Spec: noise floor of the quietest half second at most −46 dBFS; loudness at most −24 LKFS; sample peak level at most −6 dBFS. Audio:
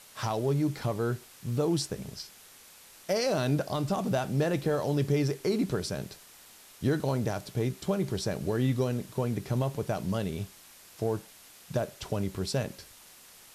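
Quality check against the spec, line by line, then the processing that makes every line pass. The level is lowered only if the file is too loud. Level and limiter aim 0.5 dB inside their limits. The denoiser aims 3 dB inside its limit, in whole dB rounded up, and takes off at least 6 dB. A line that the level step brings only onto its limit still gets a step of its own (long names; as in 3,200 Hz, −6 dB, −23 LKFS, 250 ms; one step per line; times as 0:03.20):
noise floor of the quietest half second −54 dBFS: in spec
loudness −30.5 LKFS: in spec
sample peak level −15.0 dBFS: in spec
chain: no processing needed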